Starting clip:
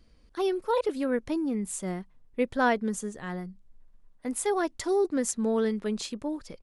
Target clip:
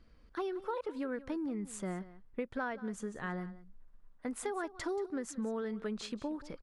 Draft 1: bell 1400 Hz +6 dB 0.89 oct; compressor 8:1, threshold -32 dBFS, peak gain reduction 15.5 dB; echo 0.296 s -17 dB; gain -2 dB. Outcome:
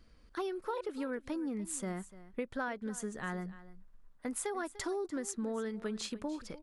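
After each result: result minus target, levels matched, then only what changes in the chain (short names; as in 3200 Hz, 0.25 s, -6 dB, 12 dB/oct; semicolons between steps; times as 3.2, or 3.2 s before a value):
echo 0.115 s late; 4000 Hz band +2.5 dB
change: echo 0.181 s -17 dB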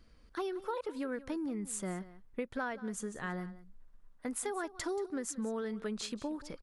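4000 Hz band +2.5 dB
add first: LPF 3200 Hz 6 dB/oct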